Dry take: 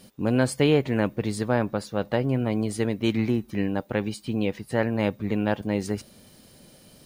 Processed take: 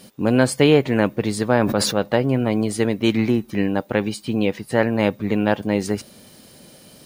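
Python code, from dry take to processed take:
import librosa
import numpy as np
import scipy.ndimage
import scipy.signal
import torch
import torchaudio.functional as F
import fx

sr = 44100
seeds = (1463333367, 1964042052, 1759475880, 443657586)

y = fx.low_shelf(x, sr, hz=80.0, db=-11.0)
y = fx.sustainer(y, sr, db_per_s=38.0, at=(1.59, 1.99))
y = y * librosa.db_to_amplitude(6.5)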